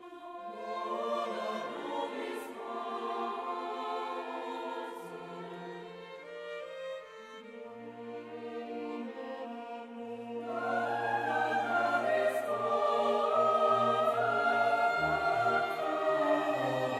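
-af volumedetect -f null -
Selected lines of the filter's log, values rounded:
mean_volume: -33.3 dB
max_volume: -16.5 dB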